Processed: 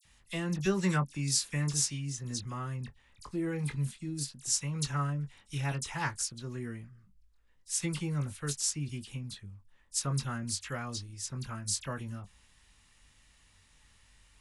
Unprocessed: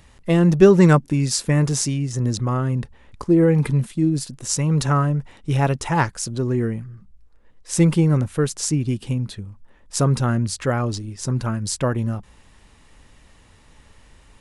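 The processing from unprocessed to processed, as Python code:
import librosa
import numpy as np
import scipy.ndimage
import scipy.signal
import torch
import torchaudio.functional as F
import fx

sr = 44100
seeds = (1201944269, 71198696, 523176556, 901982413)

y = fx.tone_stack(x, sr, knobs='5-5-5')
y = fx.doubler(y, sr, ms=21.0, db=-8)
y = fx.dispersion(y, sr, late='lows', ms=50.0, hz=2800.0)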